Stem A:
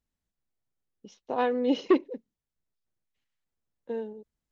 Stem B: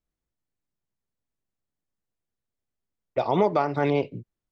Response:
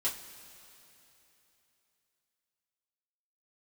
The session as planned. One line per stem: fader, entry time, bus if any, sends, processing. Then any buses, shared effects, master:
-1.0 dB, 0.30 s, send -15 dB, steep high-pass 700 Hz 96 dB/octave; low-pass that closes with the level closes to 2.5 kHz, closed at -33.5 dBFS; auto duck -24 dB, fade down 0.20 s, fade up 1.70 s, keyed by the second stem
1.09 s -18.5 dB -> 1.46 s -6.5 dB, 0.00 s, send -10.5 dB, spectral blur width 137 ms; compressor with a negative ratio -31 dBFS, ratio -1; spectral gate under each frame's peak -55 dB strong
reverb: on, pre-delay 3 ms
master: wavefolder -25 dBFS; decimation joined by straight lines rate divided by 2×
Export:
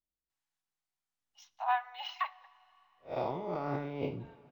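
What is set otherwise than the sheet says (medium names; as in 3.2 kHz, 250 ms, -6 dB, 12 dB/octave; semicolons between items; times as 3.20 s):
stem B: missing spectral gate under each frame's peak -55 dB strong; master: missing wavefolder -25 dBFS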